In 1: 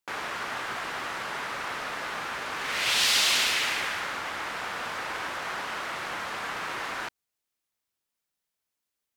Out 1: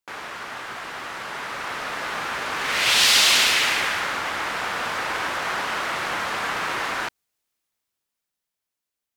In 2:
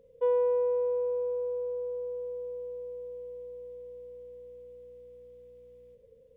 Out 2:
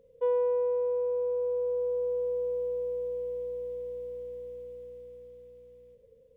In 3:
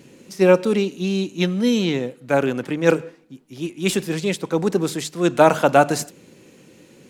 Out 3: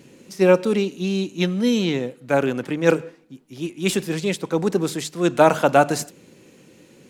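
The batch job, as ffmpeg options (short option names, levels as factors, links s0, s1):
-af "dynaudnorm=f=270:g=13:m=2.66,volume=0.891"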